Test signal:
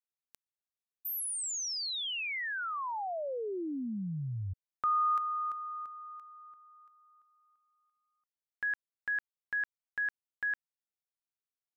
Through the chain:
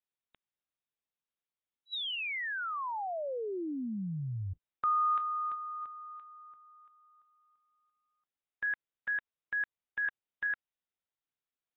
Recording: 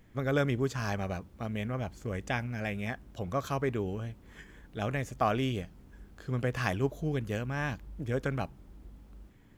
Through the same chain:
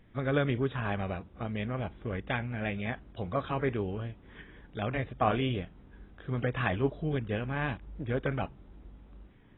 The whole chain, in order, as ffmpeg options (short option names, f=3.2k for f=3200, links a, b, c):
-ar 22050 -c:a aac -b:a 16k